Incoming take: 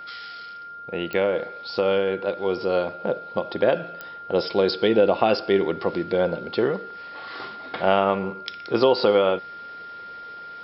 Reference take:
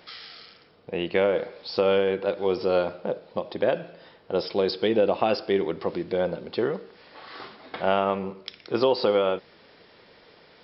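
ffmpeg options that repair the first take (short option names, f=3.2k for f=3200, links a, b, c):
-af "adeclick=t=4,bandreject=f=1.4k:w=30,asetnsamples=n=441:p=0,asendcmd='3 volume volume -3.5dB',volume=0dB"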